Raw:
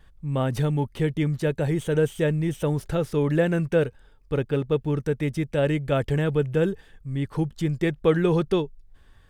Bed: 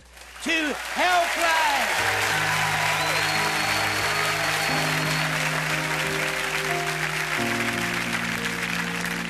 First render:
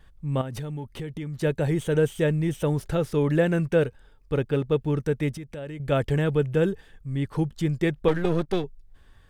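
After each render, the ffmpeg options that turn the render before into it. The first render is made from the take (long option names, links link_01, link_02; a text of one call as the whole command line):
ffmpeg -i in.wav -filter_complex "[0:a]asettb=1/sr,asplit=3[link_01][link_02][link_03];[link_01]atrim=end=0.414[link_04];[link_02]atrim=start=0.41:end=1.4,asetpts=PTS-STARTPTS,afade=type=in:duration=0.004:curve=qsin,afade=type=out:start_time=0.986:duration=0.004:curve=qsin,acompressor=threshold=-31dB:ratio=4:attack=3.2:release=140:knee=1:detection=peak[link_05];[link_03]atrim=start=1.396[link_06];[link_04][link_05]acrossfade=duration=0.004:curve1=hsin:curve2=qsin[link_07];[link_07][link_06]acrossfade=duration=0.004:curve1=qsin:curve2=hsin,asettb=1/sr,asplit=3[link_08][link_09][link_10];[link_08]atrim=end=5.374[link_11];[link_09]atrim=start=5.37:end=5.8,asetpts=PTS-STARTPTS,afade=type=in:duration=0.004:curve=qsin,afade=type=out:start_time=0.426:duration=0.004:curve=qsin,acompressor=threshold=-37dB:ratio=3:attack=3.2:release=140:knee=1:detection=peak[link_12];[link_10]atrim=start=5.796[link_13];[link_11][link_12]acrossfade=duration=0.004:curve1=hsin:curve2=qsin[link_14];[link_14][link_13]acrossfade=duration=0.004:curve1=qsin:curve2=hsin,asettb=1/sr,asplit=3[link_15][link_16][link_17];[link_15]atrim=end=8.084[link_18];[link_16]atrim=start=8.08:end=8.64,asetpts=PTS-STARTPTS,afade=type=in:duration=0.004:curve=qsin,afade=type=out:start_time=0.556:duration=0.004:curve=qsin,aeval=exprs='if(lt(val(0),0),0.251*val(0),val(0))':channel_layout=same[link_19];[link_17]atrim=start=8.636[link_20];[link_18][link_19]acrossfade=duration=0.004:curve1=hsin:curve2=qsin[link_21];[link_21][link_20]acrossfade=duration=0.004:curve1=qsin:curve2=hsin" out.wav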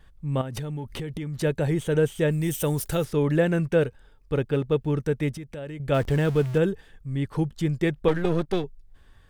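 ffmpeg -i in.wav -filter_complex "[0:a]asettb=1/sr,asplit=3[link_01][link_02][link_03];[link_01]atrim=end=0.574[link_04];[link_02]atrim=start=0.57:end=1.75,asetpts=PTS-STARTPTS,afade=type=in:duration=0.004:curve=qsin,afade=type=out:start_time=1.176:duration=0.004:curve=qsin,acompressor=mode=upward:threshold=-27dB:ratio=2.5:attack=3.2:release=140:knee=2.83:detection=peak[link_05];[link_03]atrim=start=1.746[link_06];[link_04][link_05]acrossfade=duration=0.004:curve1=hsin:curve2=qsin[link_07];[link_07][link_06]acrossfade=duration=0.004:curve1=qsin:curve2=hsin,asplit=3[link_08][link_09][link_10];[link_08]afade=type=out:start_time=2.3:duration=0.02[link_11];[link_09]aemphasis=mode=production:type=75fm,afade=type=in:start_time=2.3:duration=0.02,afade=type=out:start_time=3.03:duration=0.02[link_12];[link_10]afade=type=in:start_time=3.03:duration=0.02[link_13];[link_11][link_12][link_13]amix=inputs=3:normalize=0,asettb=1/sr,asplit=3[link_14][link_15][link_16];[link_14]atrim=end=5.944[link_17];[link_15]atrim=start=5.94:end=6.58,asetpts=PTS-STARTPTS,afade=type=in:duration=0.004:curve=qsin,afade=type=out:start_time=0.636:duration=0.004:curve=qsin,aeval=exprs='val(0)+0.5*0.02*sgn(val(0))':channel_layout=same[link_18];[link_16]atrim=start=6.576[link_19];[link_17][link_18]acrossfade=duration=0.004:curve1=hsin:curve2=qsin[link_20];[link_20][link_19]acrossfade=duration=0.004:curve1=qsin:curve2=hsin" out.wav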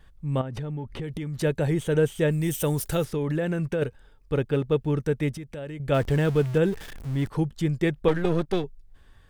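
ffmpeg -i in.wav -filter_complex "[0:a]asplit=3[link_01][link_02][link_03];[link_01]afade=type=out:start_time=0.39:duration=0.02[link_04];[link_02]aemphasis=mode=reproduction:type=75kf,afade=type=in:start_time=0.39:duration=0.02,afade=type=out:start_time=1.02:duration=0.02[link_05];[link_03]afade=type=in:start_time=1.02:duration=0.02[link_06];[link_04][link_05][link_06]amix=inputs=3:normalize=0,asettb=1/sr,asplit=3[link_07][link_08][link_09];[link_07]atrim=end=3.054[link_10];[link_08]atrim=start=3.05:end=3.82,asetpts=PTS-STARTPTS,afade=type=in:duration=0.004:curve=qsin,afade=type=out:start_time=0.766:duration=0.004:curve=qsin,acompressor=threshold=-22dB:ratio=6:attack=3.2:release=140:knee=1:detection=peak[link_11];[link_09]atrim=start=3.816[link_12];[link_10][link_11]acrossfade=duration=0.004:curve1=hsin:curve2=qsin[link_13];[link_13][link_12]acrossfade=duration=0.004:curve1=qsin:curve2=hsin,asettb=1/sr,asplit=3[link_14][link_15][link_16];[link_14]atrim=end=6.654[link_17];[link_15]atrim=start=6.65:end=7.29,asetpts=PTS-STARTPTS,afade=type=in:duration=0.004:curve=qsin,afade=type=out:start_time=0.636:duration=0.004:curve=qsin,aeval=exprs='val(0)+0.5*0.0158*sgn(val(0))':channel_layout=same[link_18];[link_16]atrim=start=7.286[link_19];[link_17][link_18]acrossfade=duration=0.004:curve1=hsin:curve2=qsin[link_20];[link_20][link_19]acrossfade=duration=0.004:curve1=qsin:curve2=hsin" out.wav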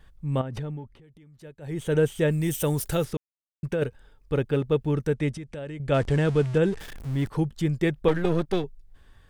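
ffmpeg -i in.wav -filter_complex "[0:a]asettb=1/sr,asplit=3[link_01][link_02][link_03];[link_01]atrim=end=5.144[link_04];[link_02]atrim=start=5.14:end=6.79,asetpts=PTS-STARTPTS,afade=type=in:duration=0.004:curve=qsin,afade=type=out:start_time=1.646:duration=0.004:curve=qsin,lowpass=frequency=9700:width=0.5412,lowpass=frequency=9700:width=1.3066[link_05];[link_03]atrim=start=6.786[link_06];[link_04][link_05]acrossfade=duration=0.004:curve1=hsin:curve2=qsin[link_07];[link_07][link_06]acrossfade=duration=0.004:curve1=qsin:curve2=hsin,asplit=5[link_08][link_09][link_10][link_11][link_12];[link_08]atrim=end=0.98,asetpts=PTS-STARTPTS,afade=type=out:start_time=0.66:duration=0.32:silence=0.0944061[link_13];[link_09]atrim=start=0.98:end=1.61,asetpts=PTS-STARTPTS,volume=-20.5dB[link_14];[link_10]atrim=start=1.61:end=3.17,asetpts=PTS-STARTPTS,afade=type=in:duration=0.32:silence=0.0944061,afade=type=out:start_time=1.556:duration=0.004:curve=hsin[link_15];[link_11]atrim=start=3.17:end=3.63,asetpts=PTS-STARTPTS,volume=0[link_16];[link_12]atrim=start=3.63,asetpts=PTS-STARTPTS,afade=type=in:duration=0.004:curve=hsin[link_17];[link_13][link_14][link_15][link_16][link_17]concat=n=5:v=0:a=1" out.wav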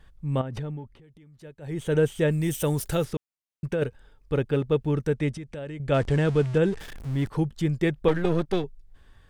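ffmpeg -i in.wav -af "highshelf=frequency=12000:gain=-5" out.wav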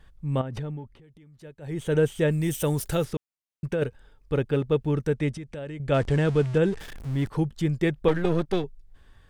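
ffmpeg -i in.wav -af anull out.wav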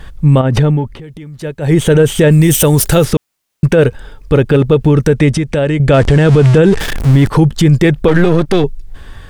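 ffmpeg -i in.wav -af "acontrast=65,alimiter=level_in=16dB:limit=-1dB:release=50:level=0:latency=1" out.wav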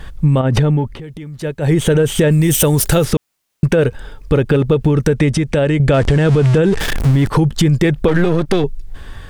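ffmpeg -i in.wav -af "acompressor=threshold=-9dB:ratio=6" out.wav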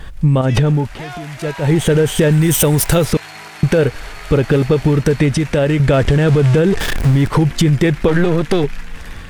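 ffmpeg -i in.wav -i bed.wav -filter_complex "[1:a]volume=-11dB[link_01];[0:a][link_01]amix=inputs=2:normalize=0" out.wav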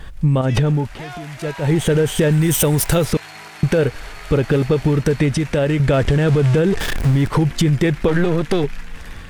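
ffmpeg -i in.wav -af "volume=-3dB" out.wav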